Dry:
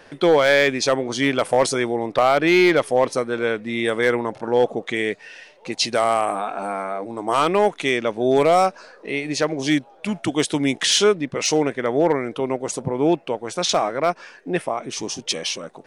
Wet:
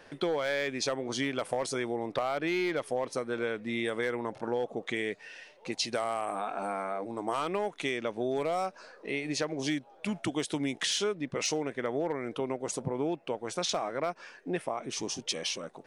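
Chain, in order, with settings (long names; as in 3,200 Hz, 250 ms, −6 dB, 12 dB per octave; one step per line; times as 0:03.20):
downward compressor, threshold −21 dBFS, peak gain reduction 9.5 dB
level −6.5 dB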